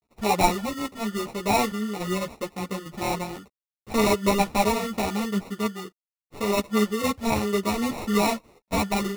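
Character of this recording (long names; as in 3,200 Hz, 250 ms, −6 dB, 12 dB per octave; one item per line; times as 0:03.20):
a quantiser's noise floor 12 bits, dither none
sample-and-hold tremolo
aliases and images of a low sample rate 1,600 Hz, jitter 0%
a shimmering, thickened sound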